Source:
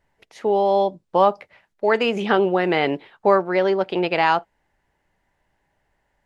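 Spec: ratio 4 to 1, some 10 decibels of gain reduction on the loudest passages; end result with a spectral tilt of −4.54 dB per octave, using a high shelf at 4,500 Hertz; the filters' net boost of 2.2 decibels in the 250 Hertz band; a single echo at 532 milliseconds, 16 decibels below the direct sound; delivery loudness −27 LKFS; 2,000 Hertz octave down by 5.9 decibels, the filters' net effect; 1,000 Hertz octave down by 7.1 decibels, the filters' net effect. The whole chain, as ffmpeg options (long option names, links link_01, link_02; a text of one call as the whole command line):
ffmpeg -i in.wav -af "equalizer=frequency=250:width_type=o:gain=4.5,equalizer=frequency=1000:width_type=o:gain=-9,equalizer=frequency=2000:width_type=o:gain=-6,highshelf=frequency=4500:gain=6,acompressor=threshold=-26dB:ratio=4,aecho=1:1:532:0.158,volume=3dB" out.wav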